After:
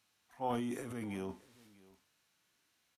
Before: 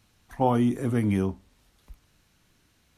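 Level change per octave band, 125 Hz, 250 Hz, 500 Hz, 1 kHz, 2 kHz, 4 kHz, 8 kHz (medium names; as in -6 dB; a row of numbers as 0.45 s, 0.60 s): -20.0 dB, -15.0 dB, -12.5 dB, -11.5 dB, -9.5 dB, -7.0 dB, -6.0 dB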